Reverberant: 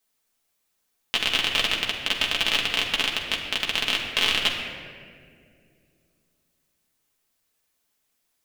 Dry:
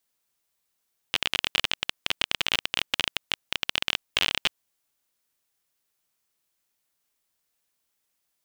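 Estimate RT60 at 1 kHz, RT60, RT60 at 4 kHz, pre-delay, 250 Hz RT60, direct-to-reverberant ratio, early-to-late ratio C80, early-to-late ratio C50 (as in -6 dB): 1.7 s, 2.2 s, 1.2 s, 5 ms, 3.2 s, -2.0 dB, 5.5 dB, 4.0 dB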